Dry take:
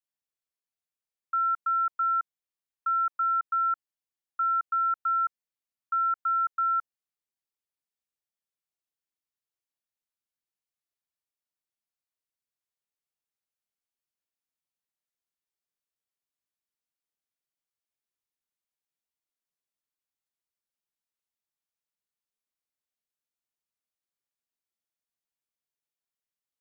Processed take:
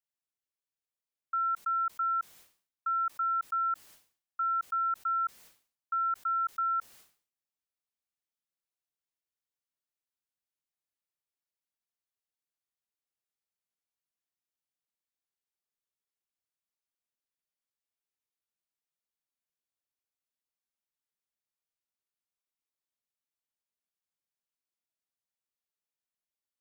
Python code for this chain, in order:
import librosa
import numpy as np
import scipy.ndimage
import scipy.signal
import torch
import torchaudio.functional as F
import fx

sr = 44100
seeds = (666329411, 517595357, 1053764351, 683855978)

y = fx.sustainer(x, sr, db_per_s=130.0)
y = y * librosa.db_to_amplitude(-4.0)